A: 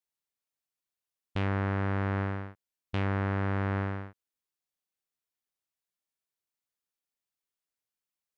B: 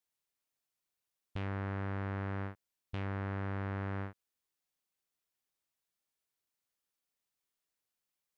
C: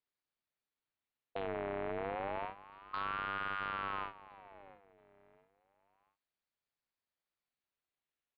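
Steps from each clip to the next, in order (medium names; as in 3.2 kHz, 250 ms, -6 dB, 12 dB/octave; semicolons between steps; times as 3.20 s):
peak limiter -30 dBFS, peak gain reduction 10.5 dB; trim +2 dB
feedback delay 681 ms, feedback 30%, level -17 dB; resampled via 8 kHz; ring modulator with a swept carrier 920 Hz, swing 45%, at 0.29 Hz; trim +1.5 dB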